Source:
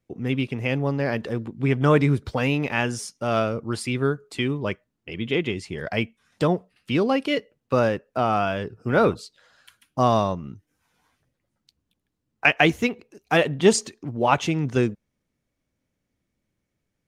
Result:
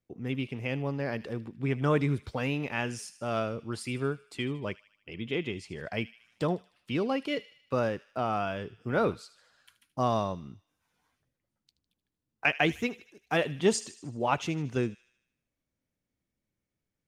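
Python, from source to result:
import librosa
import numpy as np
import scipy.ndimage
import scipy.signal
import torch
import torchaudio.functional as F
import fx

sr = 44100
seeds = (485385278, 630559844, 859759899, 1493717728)

y = fx.echo_wet_highpass(x, sr, ms=77, feedback_pct=54, hz=2300.0, wet_db=-14.0)
y = F.gain(torch.from_numpy(y), -8.0).numpy()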